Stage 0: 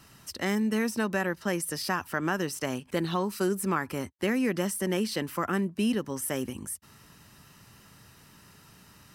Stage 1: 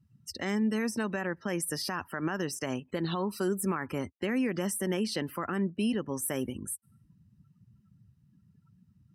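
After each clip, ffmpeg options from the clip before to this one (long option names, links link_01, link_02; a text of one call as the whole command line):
ffmpeg -i in.wav -af "afftdn=noise_reduction=33:noise_floor=-45,alimiter=limit=-21.5dB:level=0:latency=1:release=65" out.wav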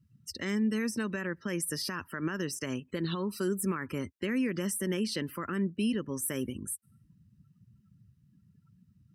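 ffmpeg -i in.wav -af "equalizer=frequency=760:width_type=o:width=0.59:gain=-14" out.wav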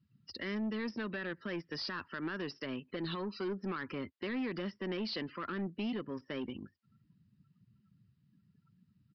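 ffmpeg -i in.wav -af "highpass=frequency=260:poles=1,aresample=16000,asoftclip=type=tanh:threshold=-31.5dB,aresample=44100,aresample=11025,aresample=44100" out.wav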